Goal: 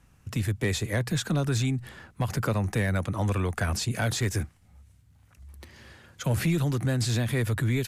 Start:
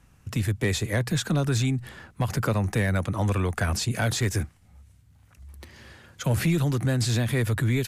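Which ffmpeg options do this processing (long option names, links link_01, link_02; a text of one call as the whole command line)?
ffmpeg -i in.wav -af "volume=-2dB" out.wav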